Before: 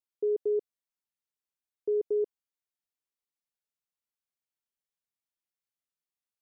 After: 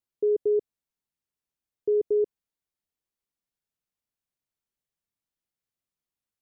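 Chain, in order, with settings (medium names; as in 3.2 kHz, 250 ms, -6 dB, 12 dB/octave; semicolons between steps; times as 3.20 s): bass shelf 380 Hz +10 dB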